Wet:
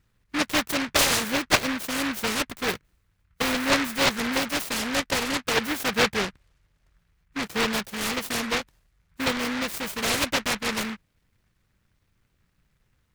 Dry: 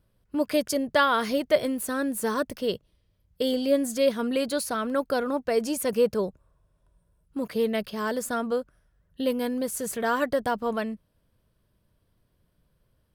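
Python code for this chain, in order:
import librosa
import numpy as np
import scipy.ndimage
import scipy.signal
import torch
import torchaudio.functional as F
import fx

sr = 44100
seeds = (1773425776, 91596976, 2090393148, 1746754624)

y = fx.noise_mod_delay(x, sr, seeds[0], noise_hz=1600.0, depth_ms=0.39)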